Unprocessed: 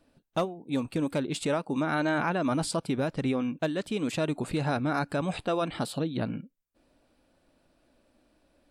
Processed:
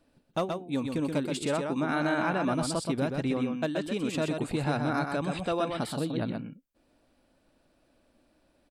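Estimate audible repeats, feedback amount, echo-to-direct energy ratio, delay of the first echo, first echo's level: 1, no regular repeats, -5.0 dB, 126 ms, -5.0 dB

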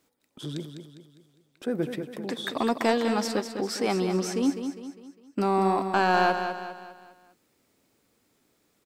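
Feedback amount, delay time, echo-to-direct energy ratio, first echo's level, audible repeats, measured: 44%, 202 ms, -7.0 dB, -8.0 dB, 4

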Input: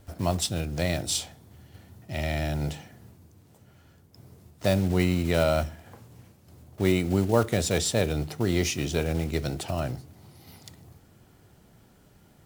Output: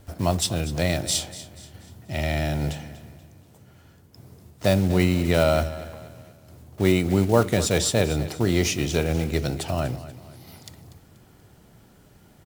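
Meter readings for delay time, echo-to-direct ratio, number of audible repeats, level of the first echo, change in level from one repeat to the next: 241 ms, -14.5 dB, 3, -15.5 dB, -8.0 dB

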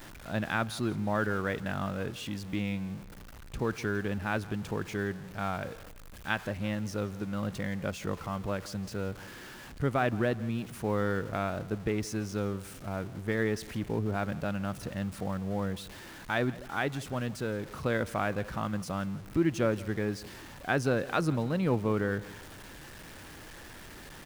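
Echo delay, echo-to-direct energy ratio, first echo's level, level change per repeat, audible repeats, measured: 169 ms, -18.5 dB, -19.5 dB, -7.0 dB, 2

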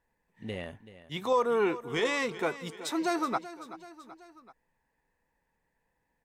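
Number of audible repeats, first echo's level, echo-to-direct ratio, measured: 3, -15.0 dB, -13.5 dB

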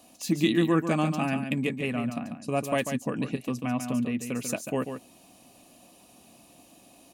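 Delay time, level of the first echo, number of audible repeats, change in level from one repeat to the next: 142 ms, -8.0 dB, 1, no regular repeats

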